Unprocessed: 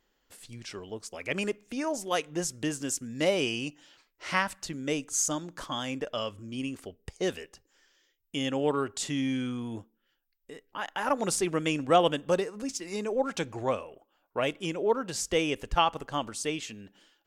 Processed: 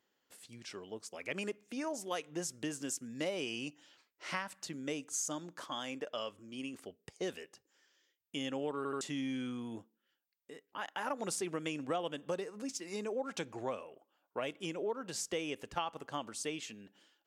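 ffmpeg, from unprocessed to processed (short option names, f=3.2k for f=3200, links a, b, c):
-filter_complex "[0:a]asettb=1/sr,asplit=3[a][b][c];[a]atrim=end=5.534[d];[b]atrim=start=5.53:end=6.74,asetpts=PTS-STARTPTS,afade=t=in:d=0.004:c=qsin,afade=t=out:st=1.206:d=0.004:c=qsin,bass=f=250:g=-6,treble=f=4k:g=-1[e];[c]atrim=start=6.736[f];[d][e]acrossfade=d=0.004:c1=hsin:c2=qsin[g];[g][f]acrossfade=d=0.004:c1=qsin:c2=hsin,asplit=4[h][i][j][k];[h]atrim=end=8.852[l];[i]atrim=start=8.768:end=8.852[m];[j]atrim=start=8.768:end=8.852[n];[k]atrim=start=9.008[o];[l][m]acrossfade=d=0.004:c1=hsin:c2=hsin[p];[p][n]acrossfade=d=0.004:c1=hsin:c2=hsin[q];[q][o]acrossfade=d=0.004:c1=hsin:c2=hsin,highpass=150,acompressor=threshold=-28dB:ratio=4,volume=-5.5dB"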